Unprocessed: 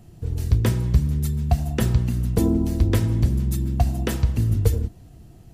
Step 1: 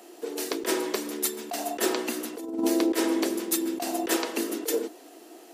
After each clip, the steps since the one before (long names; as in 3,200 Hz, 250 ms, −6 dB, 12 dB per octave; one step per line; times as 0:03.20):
Butterworth high-pass 300 Hz 48 dB per octave
compressor whose output falls as the input rises −31 dBFS, ratio −0.5
level +7 dB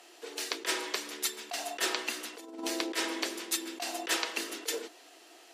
resonant band-pass 3,000 Hz, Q 0.63
level +2 dB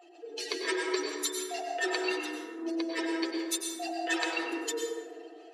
expanding power law on the bin magnitudes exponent 2.6
dense smooth reverb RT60 1.8 s, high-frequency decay 0.35×, pre-delay 85 ms, DRR −0.5 dB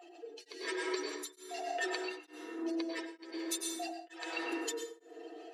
downward compressor 3 to 1, threshold −35 dBFS, peak gain reduction 8 dB
tremolo along a rectified sine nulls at 1.1 Hz
level +1 dB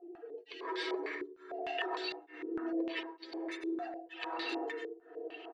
single-tap delay 973 ms −19 dB
low-pass on a step sequencer 6.6 Hz 380–4,100 Hz
level −2 dB